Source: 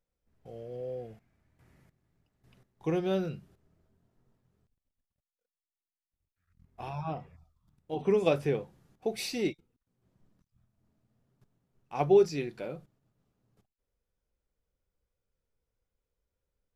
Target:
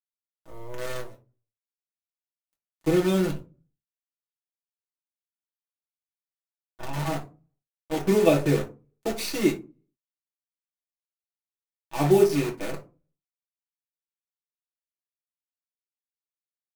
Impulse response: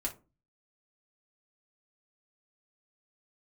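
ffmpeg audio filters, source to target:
-filter_complex "[0:a]aeval=exprs='sgn(val(0))*max(abs(val(0))-0.00335,0)':c=same,acrusher=bits=7:dc=4:mix=0:aa=0.000001[a];[1:a]atrim=start_sample=2205,asetrate=42336,aresample=44100[b];[a][b]afir=irnorm=-1:irlink=0,volume=4.5dB"

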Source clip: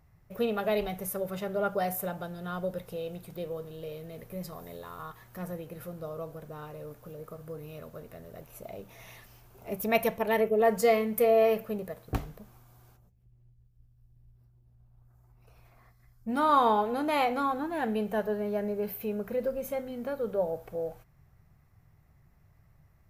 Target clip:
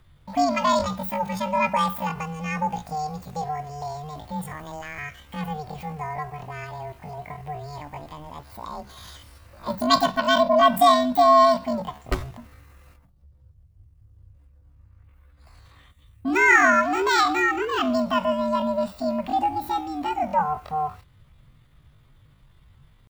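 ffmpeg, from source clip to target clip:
-af "asetrate=80880,aresample=44100,atempo=0.545254,afreqshift=-150,volume=7.5dB"

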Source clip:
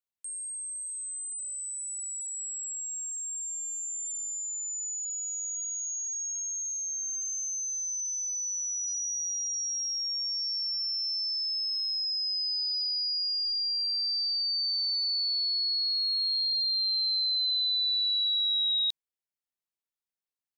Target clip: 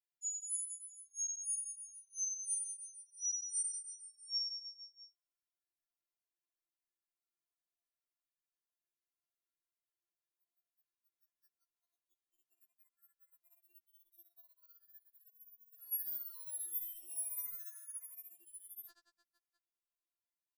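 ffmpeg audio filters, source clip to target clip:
-filter_complex "[0:a]asettb=1/sr,asplit=3[a][b][c];[a]atrim=end=15.794[d];[b]atrim=start=15.79:end=17.79,asetpts=PTS-STARTPTS,afade=t=in:d=0.004:c=qsin,afade=t=out:st=1.996:d=0.004:c=qsin,equalizer=f=5.4k:t=o:w=0.96:g=14[e];[c]atrim=start=17.786[f];[d][e]acrossfade=d=0.004:c1=hsin:c2=qsin[g];[g][f]acrossfade=d=0.004:c1=qsin:c2=hsin,aecho=1:1:80|180|305|461.2|656.6:0.631|0.398|0.251|0.158|0.1,volume=21.5dB,asoftclip=hard,volume=-21.5dB,afftfilt=real='re*(1-between(b*sr/4096,3400,7100))':imag='im*(1-between(b*sr/4096,3400,7100))':win_size=4096:overlap=0.75,aeval=exprs='val(0)*sin(2*PI*1600*n/s)':c=same,afftfilt=real='re*4*eq(mod(b,16),0)':imag='im*4*eq(mod(b,16),0)':win_size=2048:overlap=0.75,volume=-2.5dB"

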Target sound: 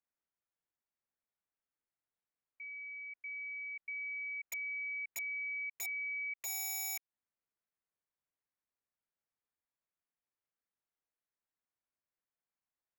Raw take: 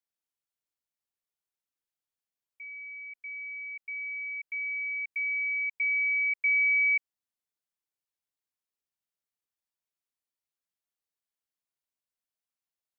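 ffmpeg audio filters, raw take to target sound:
-af "lowpass=f=2.2k:w=0.5412,lowpass=f=2.2k:w=1.3066,acompressor=threshold=-38dB:ratio=8,aeval=exprs='(mod(63.1*val(0)+1,2)-1)/63.1':c=same"

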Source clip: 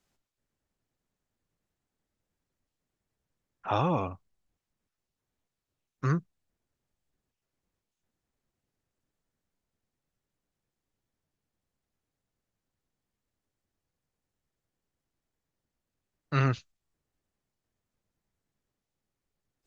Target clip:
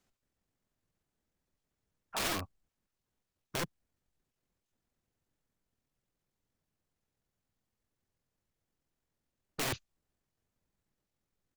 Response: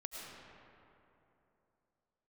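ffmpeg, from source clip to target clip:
-af "aeval=exprs='(mod(25.1*val(0)+1,2)-1)/25.1':c=same,atempo=1.7"

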